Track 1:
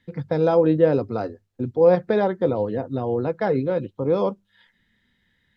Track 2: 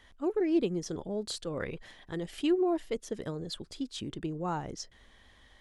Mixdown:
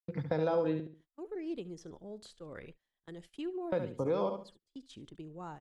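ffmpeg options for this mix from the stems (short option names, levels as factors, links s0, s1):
-filter_complex "[0:a]agate=range=0.0224:threshold=0.01:ratio=3:detection=peak,volume=0.596,asplit=3[s0][s1][s2];[s0]atrim=end=0.8,asetpts=PTS-STARTPTS,afade=t=out:st=0.796:d=0.004:c=hsin[s3];[s1]atrim=start=0.8:end=3.72,asetpts=PTS-STARTPTS,volume=0[s4];[s2]atrim=start=3.72,asetpts=PTS-STARTPTS,afade=t=in:d=0.004:c=hsin[s5];[s3][s4][s5]concat=n=3:v=0:a=1,asplit=3[s6][s7][s8];[s7]volume=0.376[s9];[1:a]highshelf=f=4100:g=3.5,adelay=950,volume=0.266,asplit=2[s10][s11];[s11]volume=0.1[s12];[s8]apad=whole_len=288926[s13];[s10][s13]sidechaincompress=threshold=0.0158:ratio=8:attack=16:release=490[s14];[s9][s12]amix=inputs=2:normalize=0,aecho=0:1:70|140|210|280:1|0.22|0.0484|0.0106[s15];[s6][s14][s15]amix=inputs=3:normalize=0,agate=range=0.0562:threshold=0.00251:ratio=16:detection=peak,acrossover=split=630|2800[s16][s17][s18];[s16]acompressor=threshold=0.0224:ratio=4[s19];[s17]acompressor=threshold=0.02:ratio=4[s20];[s18]acompressor=threshold=0.00141:ratio=4[s21];[s19][s20][s21]amix=inputs=3:normalize=0"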